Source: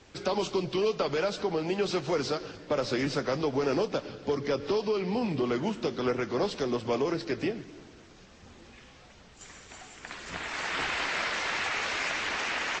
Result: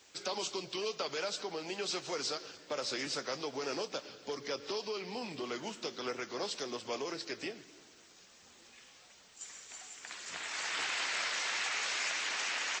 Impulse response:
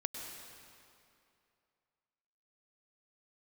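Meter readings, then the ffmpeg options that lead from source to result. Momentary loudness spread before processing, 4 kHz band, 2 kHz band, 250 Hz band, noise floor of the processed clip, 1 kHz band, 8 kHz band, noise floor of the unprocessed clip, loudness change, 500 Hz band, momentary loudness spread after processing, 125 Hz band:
9 LU, −1.0 dB, −5.0 dB, −13.5 dB, −60 dBFS, −7.5 dB, +3.0 dB, −54 dBFS, −7.0 dB, −10.5 dB, 14 LU, −17.5 dB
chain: -af "aemphasis=mode=production:type=riaa,volume=-7.5dB"

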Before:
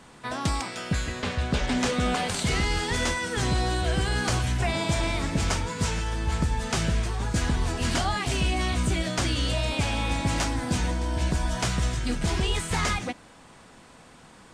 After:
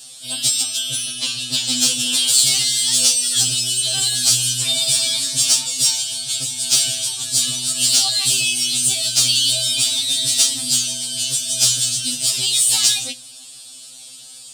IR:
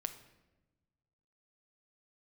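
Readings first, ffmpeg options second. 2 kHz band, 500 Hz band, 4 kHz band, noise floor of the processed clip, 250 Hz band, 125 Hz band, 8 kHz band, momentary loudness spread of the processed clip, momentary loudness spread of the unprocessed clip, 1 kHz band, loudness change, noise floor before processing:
−0.5 dB, −8.5 dB, +16.0 dB, −39 dBFS, −7.0 dB, −9.0 dB, +20.5 dB, 7 LU, 3 LU, −10.5 dB, +11.5 dB, −51 dBFS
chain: -filter_complex "[0:a]lowshelf=frequency=100:gain=-11.5,aexciter=amount=8.9:drive=9.9:freq=3100,equalizer=frequency=400:width_type=o:width=0.33:gain=-10,equalizer=frequency=1000:width_type=o:width=0.33:gain=-7,equalizer=frequency=6300:width_type=o:width=0.33:gain=-7,asplit=2[link_01][link_02];[1:a]atrim=start_sample=2205[link_03];[link_02][link_03]afir=irnorm=-1:irlink=0,volume=-6dB[link_04];[link_01][link_04]amix=inputs=2:normalize=0,afftfilt=real='re*2.45*eq(mod(b,6),0)':imag='im*2.45*eq(mod(b,6),0)':win_size=2048:overlap=0.75,volume=-5.5dB"

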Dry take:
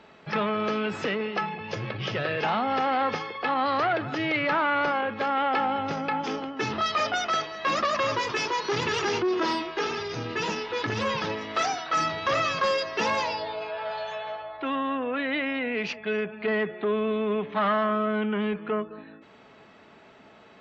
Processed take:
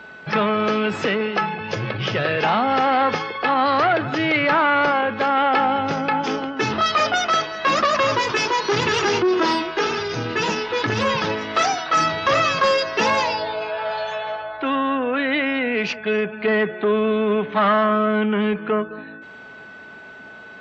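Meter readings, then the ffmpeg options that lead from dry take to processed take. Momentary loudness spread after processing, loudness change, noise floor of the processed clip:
9 LU, +7.0 dB, −40 dBFS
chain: -af "aeval=exprs='val(0)+0.00501*sin(2*PI*1500*n/s)':channel_layout=same,volume=7dB"

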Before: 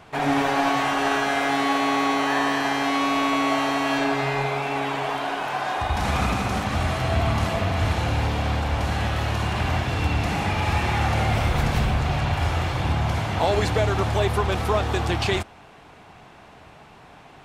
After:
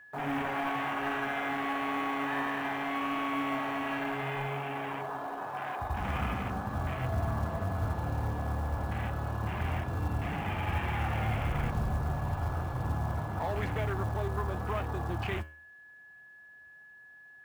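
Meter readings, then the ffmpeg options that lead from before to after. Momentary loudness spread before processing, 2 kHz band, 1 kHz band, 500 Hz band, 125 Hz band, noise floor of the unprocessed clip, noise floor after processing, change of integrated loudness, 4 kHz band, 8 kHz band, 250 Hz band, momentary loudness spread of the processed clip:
4 LU, −10.0 dB, −10.0 dB, −11.5 dB, −8.5 dB, −48 dBFS, −54 dBFS, −10.0 dB, −16.5 dB, −18.5 dB, −10.0 dB, 6 LU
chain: -filter_complex "[0:a]afwtdn=0.0398,flanger=delay=6.9:depth=6.1:regen=82:speed=0.87:shape=sinusoidal,acrossover=split=270|830|2800[link_01][link_02][link_03][link_04];[link_02]asoftclip=type=tanh:threshold=-34.5dB[link_05];[link_01][link_05][link_03][link_04]amix=inputs=4:normalize=0,aeval=exprs='val(0)+0.00447*sin(2*PI*1700*n/s)':channel_layout=same,acrusher=bits=7:mode=log:mix=0:aa=0.000001,volume=-4dB"

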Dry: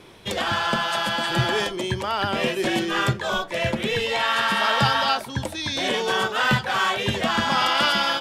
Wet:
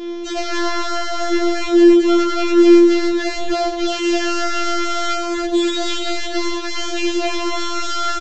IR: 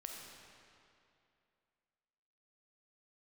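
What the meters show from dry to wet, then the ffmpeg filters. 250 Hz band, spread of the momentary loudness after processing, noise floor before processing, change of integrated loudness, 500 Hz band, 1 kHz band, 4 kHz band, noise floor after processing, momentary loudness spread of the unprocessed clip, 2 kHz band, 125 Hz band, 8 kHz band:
+14.5 dB, 11 LU, −37 dBFS, +5.0 dB, +9.0 dB, −0.5 dB, −0.5 dB, −25 dBFS, 6 LU, −3.0 dB, below −15 dB, +6.5 dB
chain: -filter_complex "[0:a]afftfilt=real='hypot(re,im)*cos(PI*b)':imag='0':win_size=1024:overlap=0.75,acompressor=threshold=-28dB:ratio=12,aresample=16000,aeval=exprs='0.15*sin(PI/2*3.55*val(0)/0.15)':channel_layout=same,aresample=44100,lowshelf=frequency=650:width_type=q:width=3:gain=7.5,asplit=2[link_01][link_02];[link_02]aecho=0:1:88|96|116|125|283:0.299|0.112|0.237|0.158|0.668[link_03];[link_01][link_03]amix=inputs=2:normalize=0,afftfilt=real='re*4*eq(mod(b,16),0)':imag='im*4*eq(mod(b,16),0)':win_size=2048:overlap=0.75,volume=-7dB"

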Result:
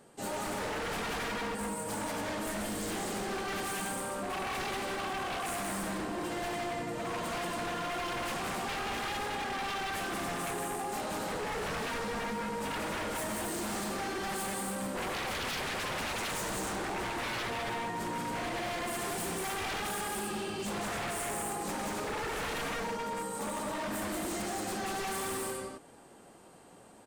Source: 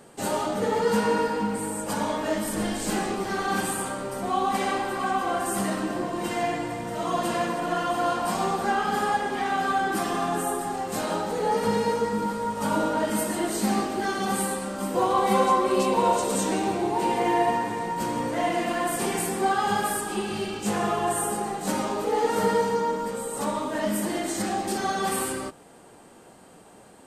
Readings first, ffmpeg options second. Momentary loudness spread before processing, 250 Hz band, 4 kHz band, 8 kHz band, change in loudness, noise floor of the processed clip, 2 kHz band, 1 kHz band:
6 LU, −10.5 dB, −3.5 dB, −6.0 dB, −9.0 dB, −55 dBFS, −4.5 dB, −10.5 dB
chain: -af "aecho=1:1:183.7|277:0.794|0.631,aeval=exprs='0.075*(abs(mod(val(0)/0.075+3,4)-2)-1)':channel_layout=same,volume=-8dB"

